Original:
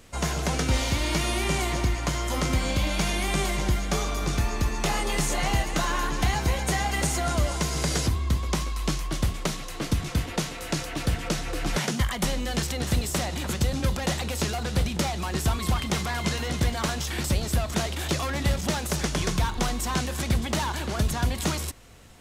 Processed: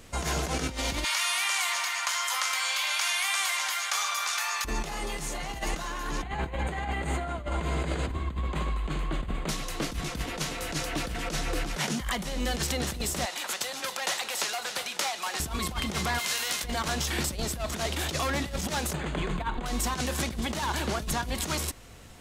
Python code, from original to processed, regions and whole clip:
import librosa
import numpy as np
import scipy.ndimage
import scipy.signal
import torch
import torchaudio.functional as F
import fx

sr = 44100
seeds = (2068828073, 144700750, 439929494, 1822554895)

y = fx.chain(x, sr, fx.highpass(hz=1000.0, slope=24),
    fx.env_flatten(amount_pct=50), at=(1.04, 4.65))
y = fx.chain(y, sr, fx.moving_average(points=8),
    fx.echo_feedback(ms=76, feedback_pct=55, wet_db=-12.5), at=(6.22, 9.49))
y = fx.chain(y, sr, fx.highpass(hz=810.0, slope=12),
    fx.echo_single(ms=271, db=-13.0), at=(13.25, 15.4))
y = fx.envelope_flatten(y, sr, power=0.6, at=(16.18, 16.63), fade=0.02)
y = fx.highpass(y, sr, hz=1500.0, slope=6, at=(16.18, 16.63), fade=0.02)
y = fx.chain(y, sr, fx.moving_average(points=8),
    fx.peak_eq(hz=77.0, db=-10.0, octaves=0.43), at=(18.93, 19.66))
y = fx.dynamic_eq(y, sr, hz=100.0, q=1.2, threshold_db=-39.0, ratio=4.0, max_db=-8)
y = fx.over_compress(y, sr, threshold_db=-29.0, ratio=-0.5)